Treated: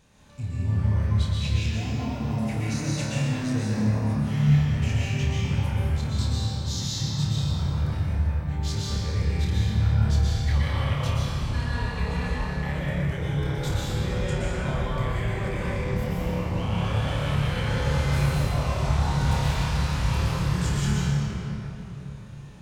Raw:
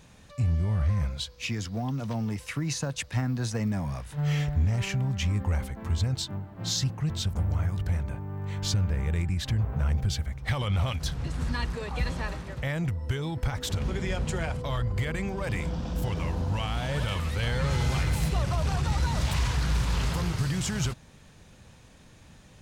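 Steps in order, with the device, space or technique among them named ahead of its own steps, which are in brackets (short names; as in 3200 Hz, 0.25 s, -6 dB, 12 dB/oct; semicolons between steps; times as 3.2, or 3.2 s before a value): tunnel (flutter echo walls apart 4.8 m, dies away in 0.35 s; reverb RT60 3.9 s, pre-delay 0.114 s, DRR -7 dB); gain -7 dB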